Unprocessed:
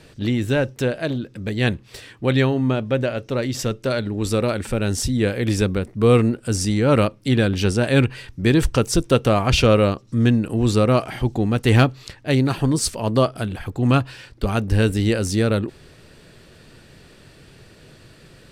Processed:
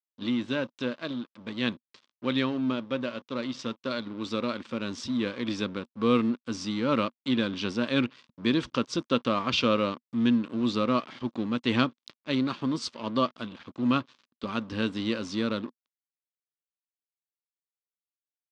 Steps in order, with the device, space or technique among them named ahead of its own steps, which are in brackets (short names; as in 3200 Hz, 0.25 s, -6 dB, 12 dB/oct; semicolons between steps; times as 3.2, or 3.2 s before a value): blown loudspeaker (crossover distortion -35 dBFS; speaker cabinet 240–5400 Hz, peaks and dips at 240 Hz +7 dB, 420 Hz -6 dB, 740 Hz -10 dB, 1100 Hz +6 dB, 1800 Hz -4 dB, 3500 Hz +5 dB); gain -6.5 dB